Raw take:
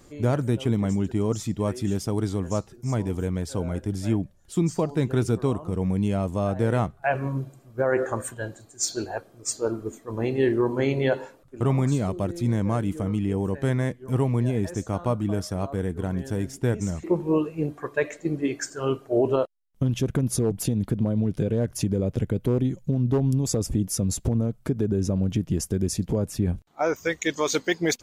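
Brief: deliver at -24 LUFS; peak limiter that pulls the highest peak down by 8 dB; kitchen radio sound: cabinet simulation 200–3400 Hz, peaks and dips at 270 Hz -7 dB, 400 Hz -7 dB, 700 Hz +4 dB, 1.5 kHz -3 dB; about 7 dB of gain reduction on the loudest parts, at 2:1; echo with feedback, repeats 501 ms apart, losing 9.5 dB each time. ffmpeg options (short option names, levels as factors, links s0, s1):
-af "acompressor=threshold=0.0282:ratio=2,alimiter=level_in=1.06:limit=0.0631:level=0:latency=1,volume=0.944,highpass=200,equalizer=f=270:t=q:w=4:g=-7,equalizer=f=400:t=q:w=4:g=-7,equalizer=f=700:t=q:w=4:g=4,equalizer=f=1500:t=q:w=4:g=-3,lowpass=f=3400:w=0.5412,lowpass=f=3400:w=1.3066,aecho=1:1:501|1002|1503|2004:0.335|0.111|0.0365|0.012,volume=5.96"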